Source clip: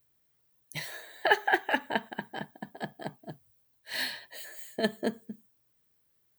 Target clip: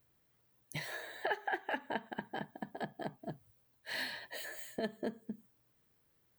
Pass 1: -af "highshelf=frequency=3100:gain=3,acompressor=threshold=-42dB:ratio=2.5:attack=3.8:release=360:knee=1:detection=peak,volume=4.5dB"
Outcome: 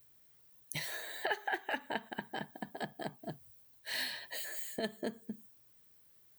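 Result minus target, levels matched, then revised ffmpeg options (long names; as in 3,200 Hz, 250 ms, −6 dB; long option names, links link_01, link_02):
8,000 Hz band +5.5 dB
-af "highshelf=frequency=3100:gain=-8,acompressor=threshold=-42dB:ratio=2.5:attack=3.8:release=360:knee=1:detection=peak,volume=4.5dB"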